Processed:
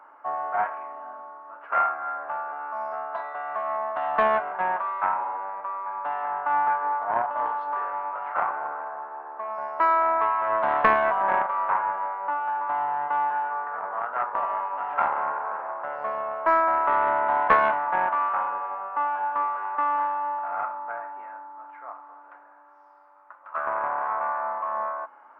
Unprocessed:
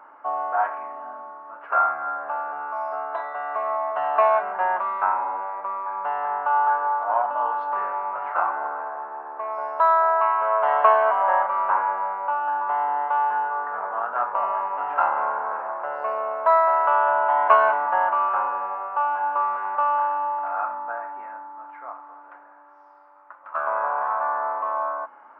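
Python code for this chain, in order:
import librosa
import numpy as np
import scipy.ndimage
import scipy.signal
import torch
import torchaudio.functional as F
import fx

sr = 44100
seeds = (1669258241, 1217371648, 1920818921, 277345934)

y = fx.low_shelf(x, sr, hz=160.0, db=-9.5)
y = fx.doppler_dist(y, sr, depth_ms=0.21)
y = y * librosa.db_to_amplitude(-2.5)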